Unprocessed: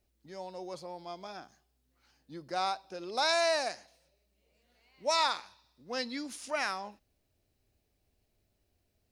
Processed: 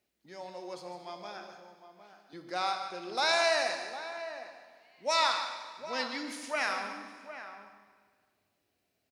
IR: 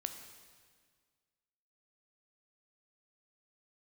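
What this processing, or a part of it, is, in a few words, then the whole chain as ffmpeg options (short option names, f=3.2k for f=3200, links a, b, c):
PA in a hall: -filter_complex "[0:a]asettb=1/sr,asplit=3[a][b][c];[a]atrim=end=1.374[d];[b]atrim=start=1.37:end=2.33,asetpts=PTS-STARTPTS,afade=t=in:d=0.004:c=qsin,afade=t=out:st=0.956:d=0.004:c=qsin,highpass=480[e];[c]atrim=start=2.326[f];[d][e]acrossfade=d=0.004:c1=hsin:c2=qsin[g];[g][f]acrossfade=d=0.004:c1=qsin:c2=hsin,highpass=140,equalizer=f=2.1k:t=o:w=1.7:g=5,aecho=1:1:150:0.299[h];[1:a]atrim=start_sample=2205[i];[h][i]afir=irnorm=-1:irlink=0,lowshelf=f=76:g=-6.5,asplit=2[j][k];[k]adelay=758,volume=-11dB,highshelf=f=4k:g=-17.1[l];[j][l]amix=inputs=2:normalize=0"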